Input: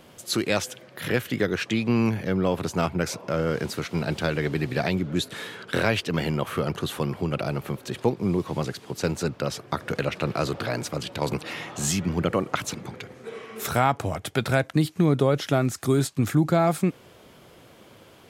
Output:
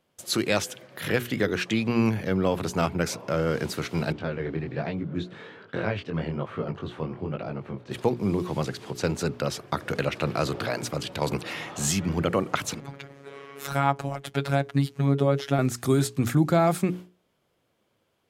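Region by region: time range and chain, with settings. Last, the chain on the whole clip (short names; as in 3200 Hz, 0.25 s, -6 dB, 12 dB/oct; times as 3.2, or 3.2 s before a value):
4.12–7.91 chorus 1.2 Hz, delay 17.5 ms, depth 7.8 ms + tape spacing loss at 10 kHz 28 dB
8.69–9.19 high shelf 9400 Hz -7 dB + upward compressor, threshold -34 dBFS
12.8–15.59 high shelf 5300 Hz -7 dB + robotiser 139 Hz
whole clip: gate with hold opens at -37 dBFS; notches 60/120/180/240/300/360/420 Hz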